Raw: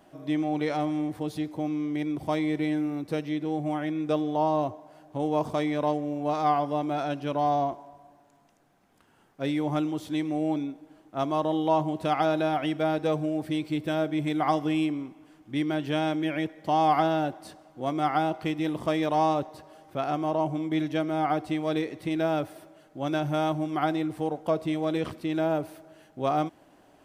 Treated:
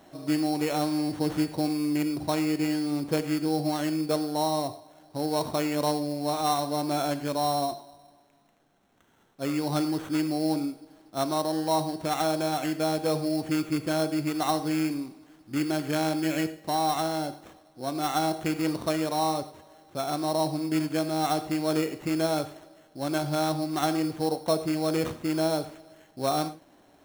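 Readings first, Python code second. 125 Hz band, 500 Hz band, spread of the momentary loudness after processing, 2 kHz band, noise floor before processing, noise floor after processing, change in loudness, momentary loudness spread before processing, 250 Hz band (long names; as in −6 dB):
0.0 dB, −0.5 dB, 7 LU, −0.5 dB, −60 dBFS, −60 dBFS, 0.0 dB, 7 LU, +0.5 dB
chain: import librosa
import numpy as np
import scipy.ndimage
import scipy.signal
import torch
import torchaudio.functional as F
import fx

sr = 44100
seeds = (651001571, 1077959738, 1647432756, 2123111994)

y = fx.sample_hold(x, sr, seeds[0], rate_hz=4800.0, jitter_pct=0)
y = fx.rev_gated(y, sr, seeds[1], gate_ms=130, shape='flat', drr_db=11.0)
y = fx.rider(y, sr, range_db=10, speed_s=0.5)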